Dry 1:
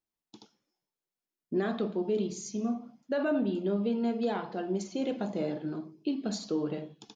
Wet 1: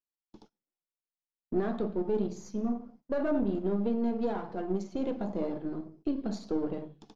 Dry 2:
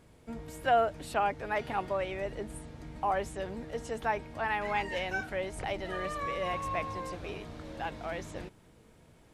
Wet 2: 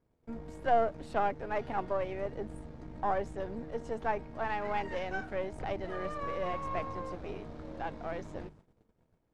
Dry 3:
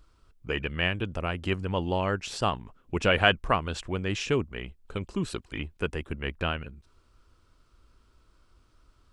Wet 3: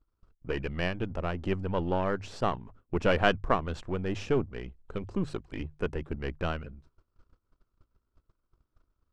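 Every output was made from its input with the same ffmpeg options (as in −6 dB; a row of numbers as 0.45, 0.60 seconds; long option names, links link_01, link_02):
-af "aeval=exprs='if(lt(val(0),0),0.447*val(0),val(0))':channel_layout=same,bandreject=frequency=50:width_type=h:width=6,bandreject=frequency=100:width_type=h:width=6,bandreject=frequency=150:width_type=h:width=6,agate=range=-16dB:threshold=-58dB:ratio=16:detection=peak,lowpass=4600,equalizer=frequency=3000:width_type=o:width=2:gain=-9.5,volume=3dB"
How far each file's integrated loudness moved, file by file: −0.5, −2.0, −2.5 LU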